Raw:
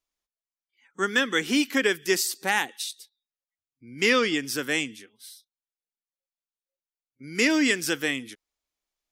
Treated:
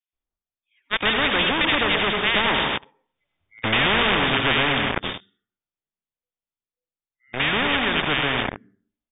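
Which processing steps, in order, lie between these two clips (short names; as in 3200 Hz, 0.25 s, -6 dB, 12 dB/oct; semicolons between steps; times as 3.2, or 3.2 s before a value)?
Doppler pass-by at 3.32, 31 m/s, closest 5.7 m; low shelf 220 Hz +10.5 dB; in parallel at +2 dB: limiter -29 dBFS, peak gain reduction 11.5 dB; on the sum: bands offset in time highs, lows 0.13 s, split 1700 Hz; on a send at -9 dB: reverb RT60 0.55 s, pre-delay 72 ms; on the sum: sample leveller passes 5; brick-wall FIR low-pass 3700 Hz; spectral compressor 4:1; gain +5 dB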